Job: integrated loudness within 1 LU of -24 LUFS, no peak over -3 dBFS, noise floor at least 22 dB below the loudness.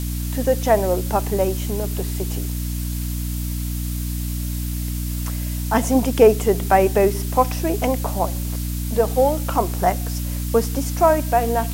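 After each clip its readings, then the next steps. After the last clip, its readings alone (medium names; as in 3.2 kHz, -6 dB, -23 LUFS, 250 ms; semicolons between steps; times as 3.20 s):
hum 60 Hz; highest harmonic 300 Hz; hum level -23 dBFS; noise floor -25 dBFS; noise floor target -43 dBFS; loudness -21.0 LUFS; peak level -1.0 dBFS; loudness target -24.0 LUFS
-> de-hum 60 Hz, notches 5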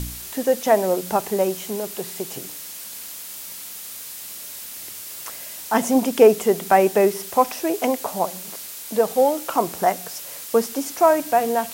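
hum not found; noise floor -36 dBFS; noise floor target -43 dBFS
-> noise reduction 7 dB, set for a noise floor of -36 dBFS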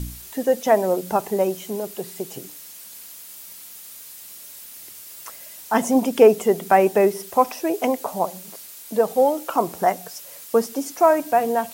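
noise floor -41 dBFS; noise floor target -43 dBFS
-> noise reduction 6 dB, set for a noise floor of -41 dBFS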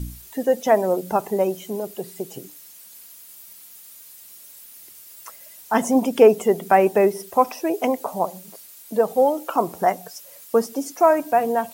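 noise floor -45 dBFS; loudness -20.5 LUFS; peak level -1.5 dBFS; loudness target -24.0 LUFS
-> trim -3.5 dB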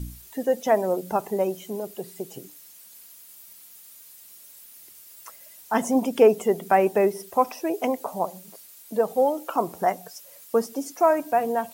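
loudness -24.0 LUFS; peak level -5.0 dBFS; noise floor -49 dBFS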